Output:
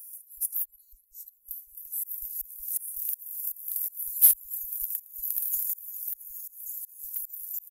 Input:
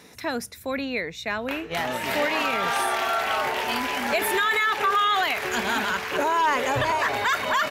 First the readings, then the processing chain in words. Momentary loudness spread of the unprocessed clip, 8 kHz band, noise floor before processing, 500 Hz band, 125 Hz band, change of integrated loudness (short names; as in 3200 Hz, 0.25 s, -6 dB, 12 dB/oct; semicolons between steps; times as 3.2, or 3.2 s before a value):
8 LU, +5.0 dB, -42 dBFS, under -40 dB, under -30 dB, -4.0 dB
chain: LFO high-pass square 2.7 Hz 300–4300 Hz; on a send: echo 79 ms -23.5 dB; on the sum: auto swell 0.387 s; inverse Chebyshev band-stop 170–3700 Hz, stop band 70 dB; high shelf 2400 Hz +10 dB; pre-echo 0.243 s -23 dB; in parallel at -3 dB: hard clip -32 dBFS, distortion -4 dB; on the sum: gain +7.5 dB